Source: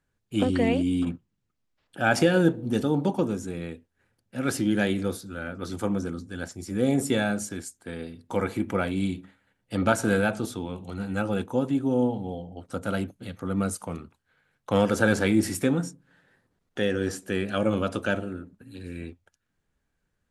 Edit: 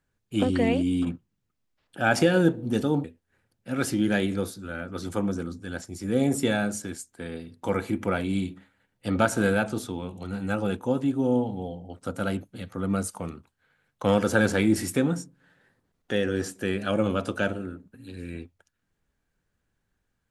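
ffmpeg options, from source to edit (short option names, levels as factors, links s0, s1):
-filter_complex "[0:a]asplit=2[s0][s1];[s0]atrim=end=3.042[s2];[s1]atrim=start=3.708[s3];[s2][s3]acrossfade=d=0.004:c1=hsin:c2=hsin"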